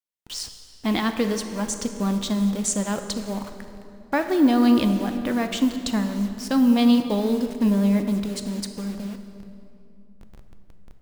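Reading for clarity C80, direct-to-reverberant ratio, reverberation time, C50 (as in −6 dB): 9.0 dB, 6.5 dB, 2.6 s, 8.0 dB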